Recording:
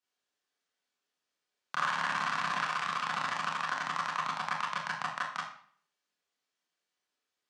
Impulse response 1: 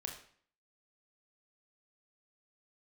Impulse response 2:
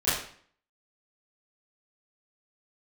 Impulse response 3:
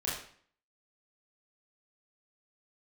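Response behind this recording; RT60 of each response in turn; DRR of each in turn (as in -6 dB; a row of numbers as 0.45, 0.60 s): 3; 0.55, 0.55, 0.55 s; 1.5, -15.0, -7.5 dB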